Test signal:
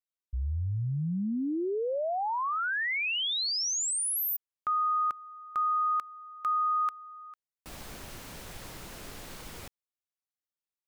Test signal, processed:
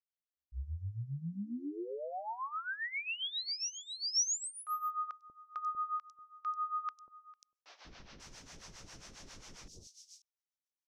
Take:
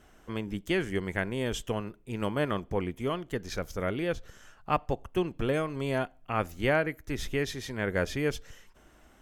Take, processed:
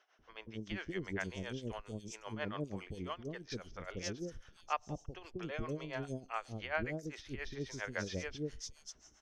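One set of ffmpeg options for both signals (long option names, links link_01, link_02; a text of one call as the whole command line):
ffmpeg -i in.wav -filter_complex "[0:a]tremolo=f=7.4:d=0.81,lowpass=frequency=5800:width_type=q:width=4.2,acrossover=split=520|4600[link_01][link_02][link_03];[link_01]adelay=190[link_04];[link_03]adelay=540[link_05];[link_04][link_02][link_05]amix=inputs=3:normalize=0,volume=-6dB" out.wav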